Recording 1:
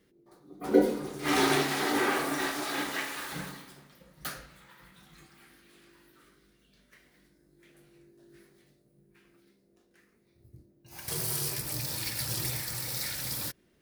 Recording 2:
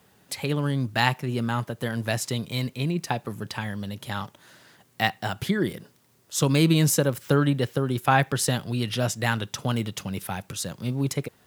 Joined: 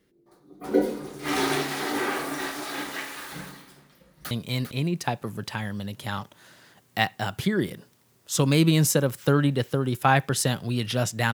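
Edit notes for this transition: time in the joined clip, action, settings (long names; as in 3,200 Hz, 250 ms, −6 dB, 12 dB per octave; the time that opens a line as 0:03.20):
recording 1
0:03.95–0:04.31: delay throw 400 ms, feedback 15%, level −8 dB
0:04.31: continue with recording 2 from 0:02.34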